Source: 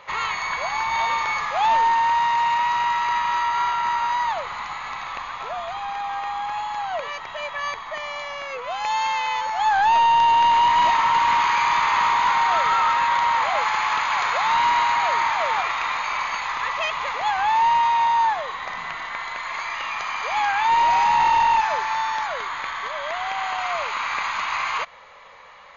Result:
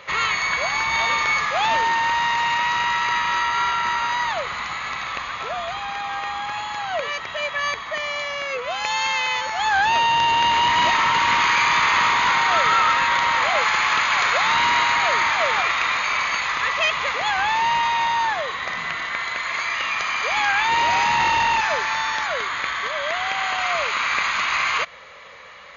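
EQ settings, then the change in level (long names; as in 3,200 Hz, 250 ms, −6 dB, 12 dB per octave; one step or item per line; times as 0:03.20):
high-pass filter 50 Hz
parametric band 890 Hz −10 dB 0.68 octaves
+6.5 dB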